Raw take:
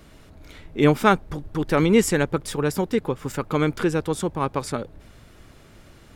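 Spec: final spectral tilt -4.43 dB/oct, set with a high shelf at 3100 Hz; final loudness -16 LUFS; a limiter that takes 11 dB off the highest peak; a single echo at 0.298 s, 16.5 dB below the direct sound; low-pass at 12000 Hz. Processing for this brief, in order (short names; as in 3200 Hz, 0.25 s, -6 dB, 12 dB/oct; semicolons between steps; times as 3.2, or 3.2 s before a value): LPF 12000 Hz; high shelf 3100 Hz +8.5 dB; limiter -13 dBFS; echo 0.298 s -16.5 dB; gain +9.5 dB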